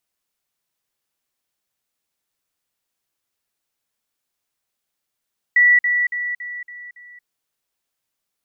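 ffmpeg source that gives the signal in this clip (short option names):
-f lavfi -i "aevalsrc='pow(10,(-9.5-6*floor(t/0.28))/20)*sin(2*PI*1950*t)*clip(min(mod(t,0.28),0.23-mod(t,0.28))/0.005,0,1)':d=1.68:s=44100"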